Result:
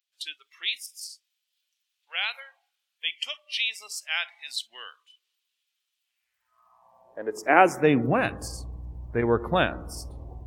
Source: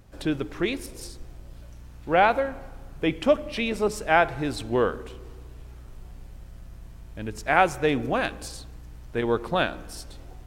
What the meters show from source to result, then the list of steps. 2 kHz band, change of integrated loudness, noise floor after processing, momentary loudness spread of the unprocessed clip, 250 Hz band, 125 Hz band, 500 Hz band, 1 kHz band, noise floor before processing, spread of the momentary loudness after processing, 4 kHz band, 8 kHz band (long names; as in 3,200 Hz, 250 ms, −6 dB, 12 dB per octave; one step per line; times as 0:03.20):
−1.0 dB, −1.5 dB, −81 dBFS, 20 LU, −1.5 dB, 0.0 dB, −3.0 dB, −2.5 dB, −45 dBFS, 20 LU, +5.5 dB, +1.5 dB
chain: high-pass filter sweep 3,200 Hz → 67 Hz, 0:06.00–0:08.54
noise reduction from a noise print of the clip's start 21 dB
level +1 dB